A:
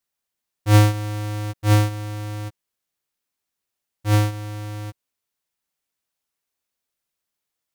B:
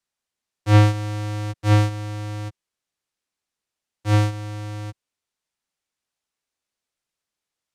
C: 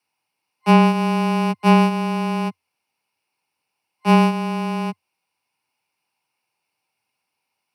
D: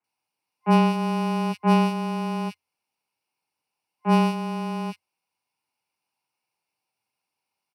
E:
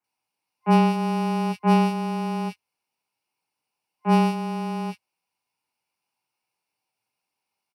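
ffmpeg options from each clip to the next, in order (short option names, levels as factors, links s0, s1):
-filter_complex "[0:a]lowpass=8900,acrossover=split=140|770|4000[s0][s1][s2][s3];[s3]alimiter=limit=0.0668:level=0:latency=1[s4];[s0][s1][s2][s4]amix=inputs=4:normalize=0"
-af "acompressor=threshold=0.141:ratio=6,afreqshift=86,superequalizer=9b=2.82:11b=0.708:12b=2.24:13b=0.562:15b=0.282,volume=2.11"
-filter_complex "[0:a]acrossover=split=2100[s0][s1];[s1]adelay=40[s2];[s0][s2]amix=inputs=2:normalize=0,volume=0.562"
-filter_complex "[0:a]asplit=2[s0][s1];[s1]adelay=17,volume=0.282[s2];[s0][s2]amix=inputs=2:normalize=0"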